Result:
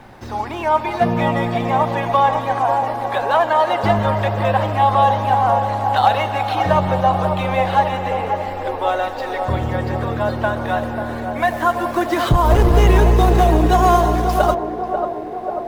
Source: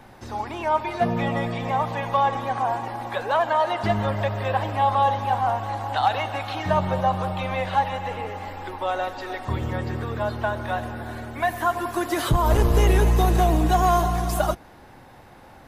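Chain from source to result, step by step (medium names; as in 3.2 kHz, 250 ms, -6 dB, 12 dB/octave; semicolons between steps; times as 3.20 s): median filter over 5 samples; band-passed feedback delay 541 ms, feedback 76%, band-pass 500 Hz, level -5.5 dB; trim +5.5 dB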